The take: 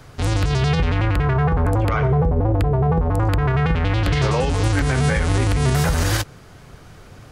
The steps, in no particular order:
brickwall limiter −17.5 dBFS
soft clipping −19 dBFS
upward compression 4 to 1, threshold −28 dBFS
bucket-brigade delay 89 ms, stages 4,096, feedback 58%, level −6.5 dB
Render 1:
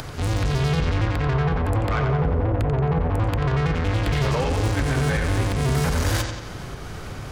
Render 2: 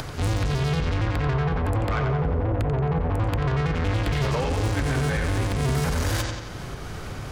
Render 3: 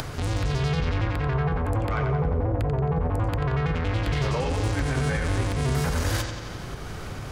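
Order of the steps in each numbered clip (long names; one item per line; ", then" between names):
soft clipping, then upward compression, then brickwall limiter, then bucket-brigade delay
upward compression, then soft clipping, then bucket-brigade delay, then brickwall limiter
brickwall limiter, then soft clipping, then bucket-brigade delay, then upward compression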